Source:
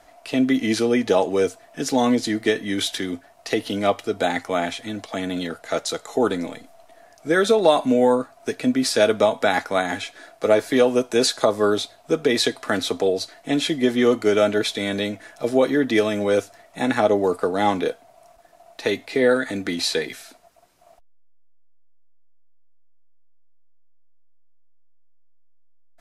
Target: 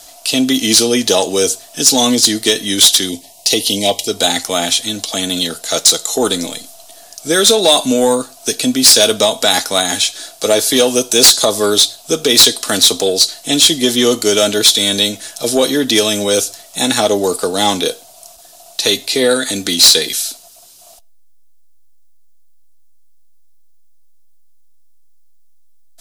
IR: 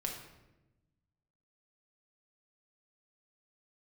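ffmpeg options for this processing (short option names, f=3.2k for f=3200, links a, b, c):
-filter_complex "[0:a]aexciter=amount=6.5:drive=6.4:freq=3k,asettb=1/sr,asplit=3[a][b][c];[a]atrim=end=3.094[d];[b]atrim=start=3.09:end=4.08,asetpts=PTS-STARTPTS,afade=t=in:d=0.004:c=qsin,afade=t=out:st=0.986:d=0.004:c=qsin,asuperstop=centerf=1400:order=8:qfactor=1.6[e];[c]atrim=start=4.076[f];[d][e]acrossfade=d=0.004:c1=hsin:c2=qsin[g];[g][f]acrossfade=d=0.004:c1=qsin:c2=hsin,asplit=2[h][i];[1:a]atrim=start_sample=2205,afade=t=out:st=0.17:d=0.01,atrim=end_sample=7938,asetrate=39690,aresample=44100[j];[i][j]afir=irnorm=-1:irlink=0,volume=-22dB[k];[h][k]amix=inputs=2:normalize=0,acontrast=39,volume=-1dB"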